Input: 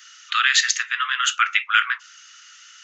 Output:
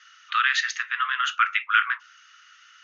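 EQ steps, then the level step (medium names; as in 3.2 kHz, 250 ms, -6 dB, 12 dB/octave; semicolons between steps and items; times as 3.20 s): elliptic low-pass 6.5 kHz, stop band 40 dB; tilt EQ -5.5 dB/octave; +2.0 dB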